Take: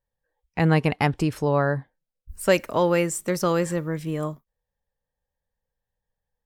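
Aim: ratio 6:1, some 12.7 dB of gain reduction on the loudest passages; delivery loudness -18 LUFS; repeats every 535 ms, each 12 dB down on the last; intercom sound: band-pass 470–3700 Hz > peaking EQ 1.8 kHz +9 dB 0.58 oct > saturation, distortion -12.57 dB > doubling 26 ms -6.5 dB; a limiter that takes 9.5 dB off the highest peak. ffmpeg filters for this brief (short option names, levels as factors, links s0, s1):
-filter_complex "[0:a]acompressor=threshold=0.0447:ratio=6,alimiter=level_in=1.12:limit=0.0631:level=0:latency=1,volume=0.891,highpass=470,lowpass=3700,equalizer=f=1800:t=o:w=0.58:g=9,aecho=1:1:535|1070|1605:0.251|0.0628|0.0157,asoftclip=threshold=0.0266,asplit=2[s0][s1];[s1]adelay=26,volume=0.473[s2];[s0][s2]amix=inputs=2:normalize=0,volume=13.3"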